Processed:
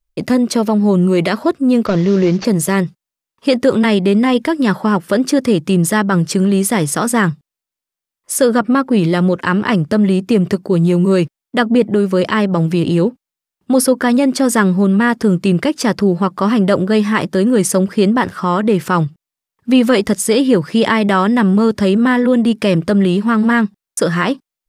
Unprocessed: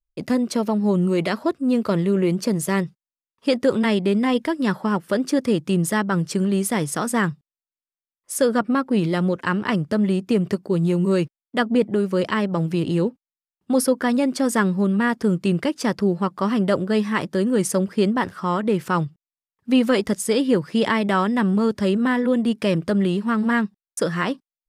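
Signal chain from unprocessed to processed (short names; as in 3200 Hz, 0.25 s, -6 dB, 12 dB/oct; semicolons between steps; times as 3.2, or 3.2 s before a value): 1.86–2.45 CVSD 32 kbps; in parallel at -1 dB: limiter -19 dBFS, peak gain reduction 11.5 dB; on the sum: gain +4 dB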